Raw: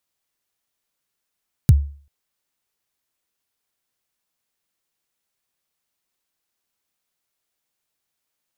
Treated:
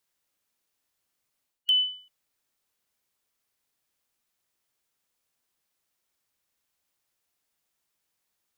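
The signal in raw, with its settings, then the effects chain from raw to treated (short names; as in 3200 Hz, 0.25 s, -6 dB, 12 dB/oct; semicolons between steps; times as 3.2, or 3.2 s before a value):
kick drum length 0.39 s, from 160 Hz, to 71 Hz, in 33 ms, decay 0.43 s, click on, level -4 dB
four-band scrambler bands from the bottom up 2413; reverse; compressor 6:1, threshold -22 dBFS; reverse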